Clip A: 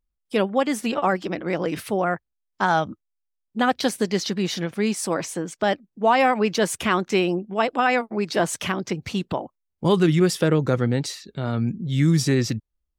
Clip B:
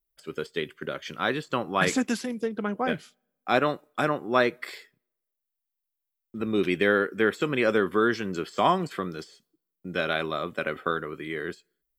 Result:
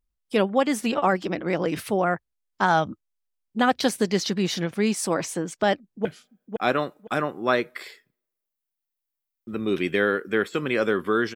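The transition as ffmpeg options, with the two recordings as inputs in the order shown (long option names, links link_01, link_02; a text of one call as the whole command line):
ffmpeg -i cue0.wav -i cue1.wav -filter_complex "[0:a]apad=whole_dur=11.35,atrim=end=11.35,atrim=end=6.052[link_01];[1:a]atrim=start=2.918:end=8.22[link_02];[link_01][link_02]acrossfade=duration=0.004:curve1=hsin:curve2=hsin,asplit=2[link_03][link_04];[link_04]afade=type=in:start_time=5.8:duration=0.01,afade=type=out:start_time=6.05:duration=0.01,aecho=0:1:510|1020|1530:0.595662|0.119132|0.0238265[link_05];[link_03][link_05]amix=inputs=2:normalize=0" out.wav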